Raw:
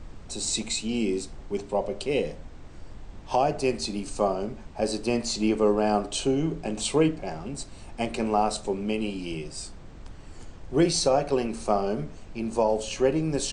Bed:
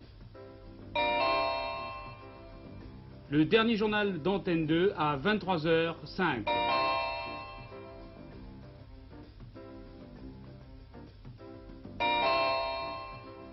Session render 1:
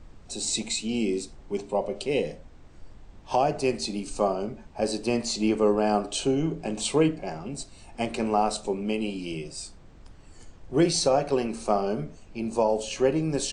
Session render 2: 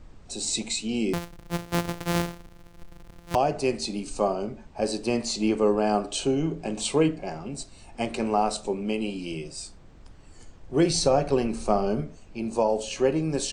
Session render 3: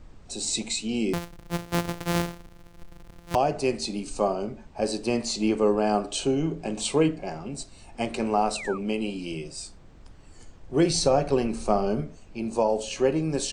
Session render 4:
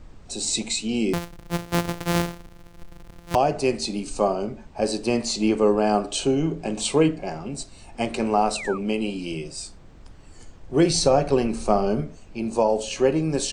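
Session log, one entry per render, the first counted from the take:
noise print and reduce 6 dB
1.13–3.35 sample sorter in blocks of 256 samples; 10.9–12.01 low shelf 150 Hz +10 dB
8.55–8.78 painted sound fall 1100–2900 Hz -37 dBFS
gain +3 dB

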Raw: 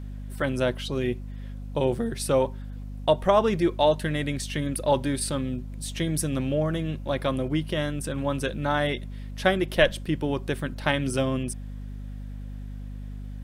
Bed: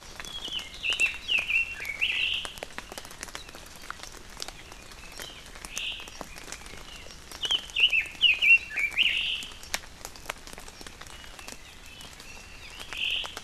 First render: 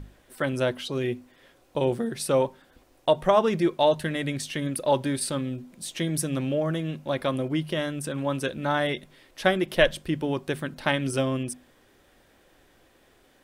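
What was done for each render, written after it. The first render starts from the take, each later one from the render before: notches 50/100/150/200/250 Hz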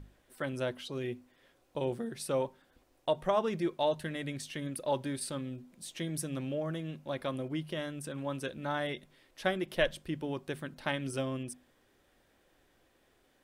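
gain -9 dB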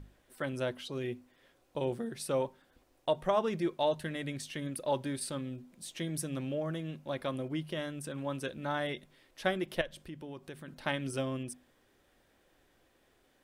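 9.81–10.68 compressor 2:1, threshold -47 dBFS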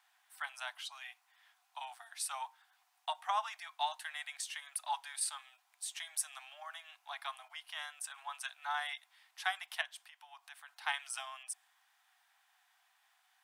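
steep high-pass 720 Hz 96 dB/oct; dynamic EQ 8100 Hz, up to +5 dB, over -56 dBFS, Q 1.4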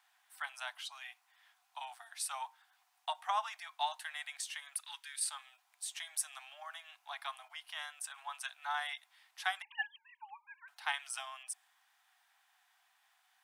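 4.8–5.25 HPF 1500 Hz 24 dB/oct; 9.62–10.68 sine-wave speech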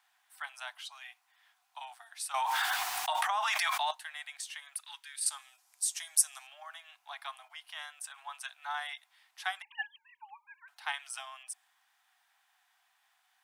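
2.34–3.91 fast leveller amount 100%; 5.26–6.47 band shelf 7900 Hz +11 dB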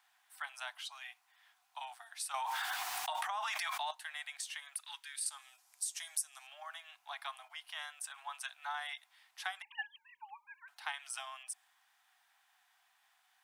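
compressor 3:1, threshold -37 dBFS, peak gain reduction 13 dB

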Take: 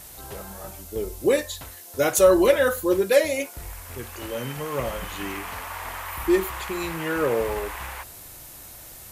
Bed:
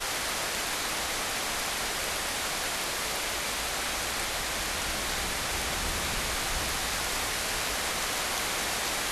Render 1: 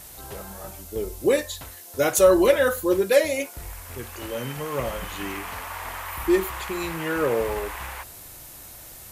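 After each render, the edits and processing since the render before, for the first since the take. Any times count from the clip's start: nothing audible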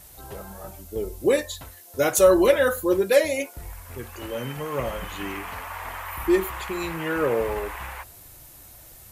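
denoiser 6 dB, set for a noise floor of -43 dBFS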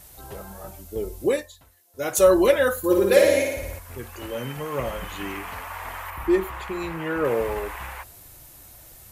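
1.23–2.23 dip -13.5 dB, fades 0.29 s; 2.78–3.79 flutter echo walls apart 9.7 m, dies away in 1 s; 6.1–7.25 high shelf 3200 Hz -8 dB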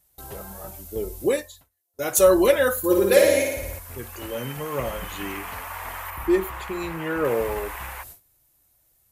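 gate with hold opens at -34 dBFS; high shelf 8500 Hz +7 dB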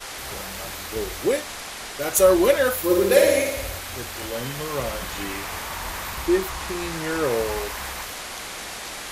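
add bed -4 dB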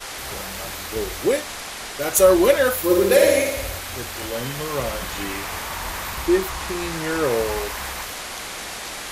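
gain +2 dB; limiter -3 dBFS, peak gain reduction 2.5 dB

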